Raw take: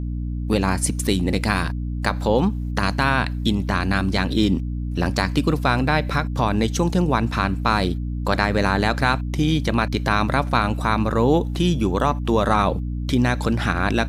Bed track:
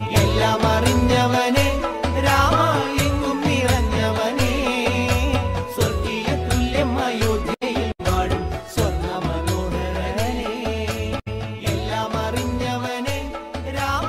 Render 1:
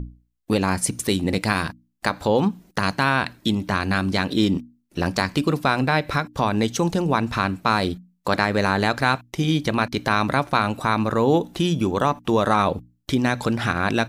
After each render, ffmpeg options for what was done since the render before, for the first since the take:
ffmpeg -i in.wav -af "bandreject=frequency=60:width_type=h:width=6,bandreject=frequency=120:width_type=h:width=6,bandreject=frequency=180:width_type=h:width=6,bandreject=frequency=240:width_type=h:width=6,bandreject=frequency=300:width_type=h:width=6" out.wav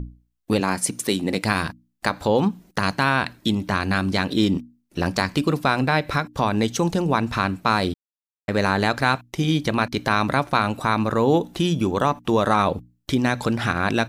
ffmpeg -i in.wav -filter_complex "[0:a]asettb=1/sr,asplit=3[link_01][link_02][link_03];[link_01]atrim=end=0.604[link_04];[link_02]atrim=start=0.6:end=1.43,asetpts=PTS-STARTPTS,afade=type=in:duration=0.004:curve=qsin,afade=type=out:start_time=0.826:duration=0.004:curve=qsin,highpass=170[link_05];[link_03]atrim=start=1.426[link_06];[link_04][link_05]acrossfade=duration=0.004:curve1=hsin:curve2=qsin[link_07];[link_07][link_06]acrossfade=duration=0.004:curve1=qsin:curve2=hsin,asplit=3[link_08][link_09][link_10];[link_08]atrim=end=7.94,asetpts=PTS-STARTPTS,afade=type=out:start_time=7.936:duration=0.004:curve=hsin[link_11];[link_09]atrim=start=7.94:end=8.48,asetpts=PTS-STARTPTS,volume=0[link_12];[link_10]atrim=start=8.48,asetpts=PTS-STARTPTS,afade=type=in:duration=0.004:curve=hsin[link_13];[link_11][link_12][link_13]concat=n=3:v=0:a=1" out.wav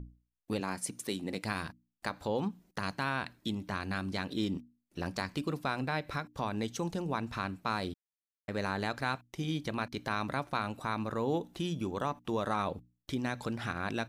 ffmpeg -i in.wav -af "volume=-13.5dB" out.wav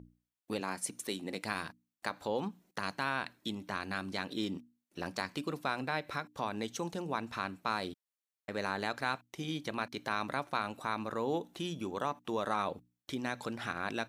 ffmpeg -i in.wav -af "highpass=frequency=280:poles=1,bandreject=frequency=4900:width=24" out.wav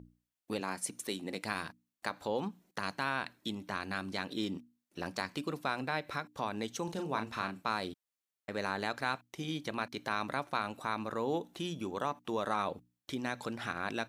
ffmpeg -i in.wav -filter_complex "[0:a]asettb=1/sr,asplit=3[link_01][link_02][link_03];[link_01]atrim=end=6.844[link_04];[link_02]atrim=start=6.84:end=7.63,asetpts=PTS-STARTPTS,afade=type=in:duration=0.004:curve=qsin,afade=type=out:start_time=0.786:duration=0.004:curve=qsin,asplit=2[link_05][link_06];[link_06]adelay=37,volume=-6.5dB[link_07];[link_05][link_07]amix=inputs=2:normalize=0,atrim=end_sample=34839[link_08];[link_03]atrim=start=7.626[link_09];[link_04][link_08]acrossfade=duration=0.004:curve1=hsin:curve2=qsin[link_10];[link_10][link_09]acrossfade=duration=0.004:curve1=qsin:curve2=hsin" out.wav

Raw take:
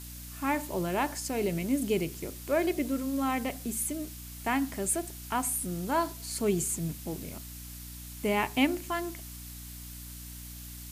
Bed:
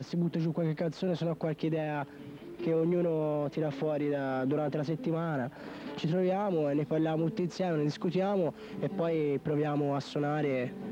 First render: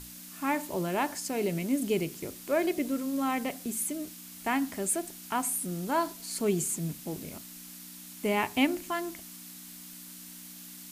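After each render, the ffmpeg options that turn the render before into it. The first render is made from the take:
ffmpeg -i in.wav -af "bandreject=frequency=60:width_type=h:width=6,bandreject=frequency=120:width_type=h:width=6" out.wav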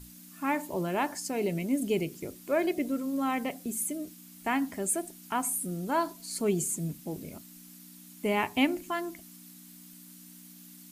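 ffmpeg -i in.wav -af "afftdn=noise_reduction=8:noise_floor=-47" out.wav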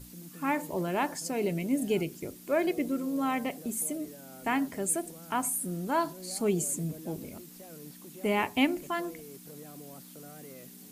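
ffmpeg -i in.wav -i bed.wav -filter_complex "[1:a]volume=-18.5dB[link_01];[0:a][link_01]amix=inputs=2:normalize=0" out.wav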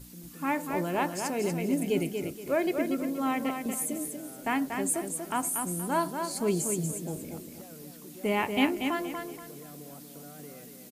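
ffmpeg -i in.wav -af "aecho=1:1:237|474|711|948:0.501|0.15|0.0451|0.0135" out.wav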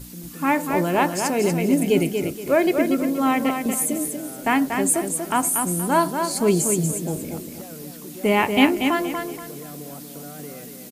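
ffmpeg -i in.wav -af "volume=9dB" out.wav

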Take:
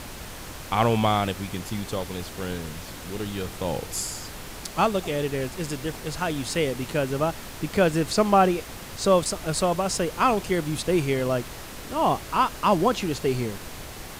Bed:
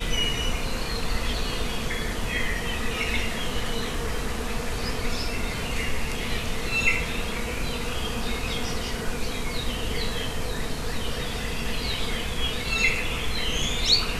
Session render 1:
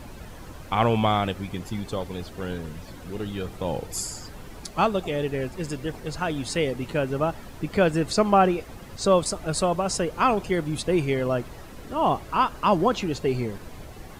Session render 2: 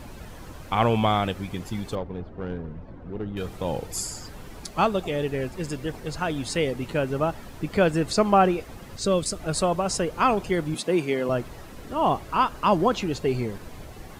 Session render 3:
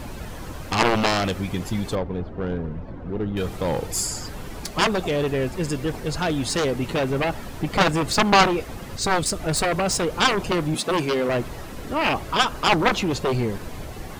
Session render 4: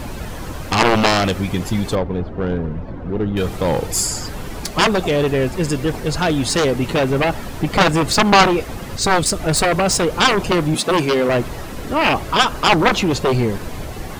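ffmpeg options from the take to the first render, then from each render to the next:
ffmpeg -i in.wav -af "afftdn=noise_reduction=11:noise_floor=-39" out.wav
ffmpeg -i in.wav -filter_complex "[0:a]asettb=1/sr,asplit=3[link_01][link_02][link_03];[link_01]atrim=end=1.954[link_04];[link_02]atrim=start=1.95:end=3.37,asetpts=PTS-STARTPTS,afade=type=in:duration=0.004:curve=qsin,afade=type=out:start_time=1.416:duration=0.004:curve=qsin,adynamicsmooth=sensitivity=1:basefreq=1100[link_05];[link_03]atrim=start=3.366[link_06];[link_04][link_05]acrossfade=duration=0.004:curve1=hsin:curve2=qsin[link_07];[link_07][link_06]acrossfade=duration=0.004:curve1=qsin:curve2=hsin,asettb=1/sr,asplit=3[link_08][link_09][link_10];[link_08]atrim=end=8.994[link_11];[link_09]atrim=start=8.99:end=9.4,asetpts=PTS-STARTPTS,afade=type=in:duration=0.004:curve=qsin,afade=type=out:start_time=0.406:duration=0.004:curve=qsin,equalizer=frequency=870:width_type=o:width=0.91:gain=-12[link_12];[link_10]atrim=start=9.396[link_13];[link_11][link_12]acrossfade=duration=0.004:curve1=hsin:curve2=qsin[link_14];[link_14][link_13]acrossfade=duration=0.004:curve1=qsin:curve2=hsin,asettb=1/sr,asplit=3[link_15][link_16][link_17];[link_15]atrim=end=10.744[link_18];[link_16]atrim=start=10.74:end=11.29,asetpts=PTS-STARTPTS,afade=type=in:duration=0.004:curve=qsin,afade=type=out:start_time=0.546:duration=0.004:curve=qsin,highpass=frequency=170:width=0.5412,highpass=frequency=170:width=1.3066[link_19];[link_17]atrim=start=11.286[link_20];[link_18][link_19]acrossfade=duration=0.004:curve1=hsin:curve2=qsin[link_21];[link_21][link_20]acrossfade=duration=0.004:curve1=qsin:curve2=hsin" out.wav
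ffmpeg -i in.wav -af "aeval=exprs='0.501*(cos(1*acos(clip(val(0)/0.501,-1,1)))-cos(1*PI/2))+0.224*(cos(7*acos(clip(val(0)/0.501,-1,1)))-cos(7*PI/2))':channel_layout=same" out.wav
ffmpeg -i in.wav -af "volume=6dB,alimiter=limit=-1dB:level=0:latency=1" out.wav

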